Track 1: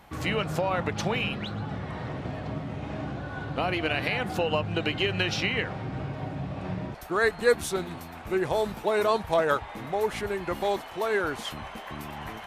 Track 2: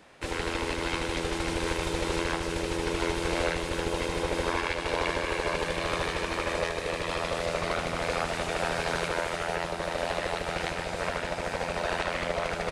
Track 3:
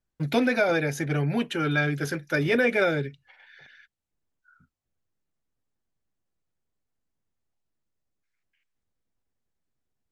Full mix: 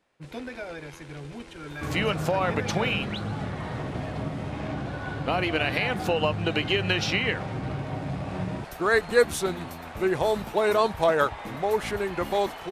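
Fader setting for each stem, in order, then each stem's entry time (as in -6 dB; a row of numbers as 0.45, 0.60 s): +2.0, -17.5, -14.5 dB; 1.70, 0.00, 0.00 s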